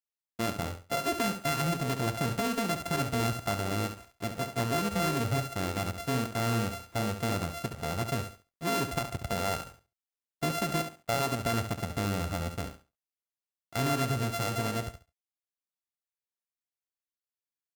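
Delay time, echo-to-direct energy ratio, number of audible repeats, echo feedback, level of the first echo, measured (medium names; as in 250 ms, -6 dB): 69 ms, -9.0 dB, 2, 20%, -9.0 dB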